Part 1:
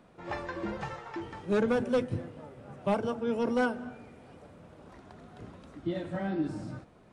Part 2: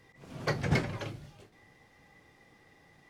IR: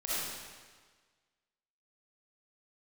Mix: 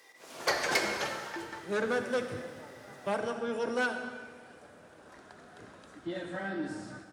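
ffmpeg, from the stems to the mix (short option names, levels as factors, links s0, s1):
-filter_complex "[0:a]equalizer=f=1600:w=3.3:g=8.5,asoftclip=type=tanh:threshold=0.0944,adelay=200,volume=0.708,asplit=2[s0][s1];[s1]volume=0.266[s2];[1:a]highpass=420,volume=1.26,asplit=2[s3][s4];[s4]volume=0.335[s5];[2:a]atrim=start_sample=2205[s6];[s2][s5]amix=inputs=2:normalize=0[s7];[s7][s6]afir=irnorm=-1:irlink=0[s8];[s0][s3][s8]amix=inputs=3:normalize=0,highpass=48,bass=f=250:g=-9,treble=f=4000:g=8,aeval=exprs='0.141*(abs(mod(val(0)/0.141+3,4)-2)-1)':c=same"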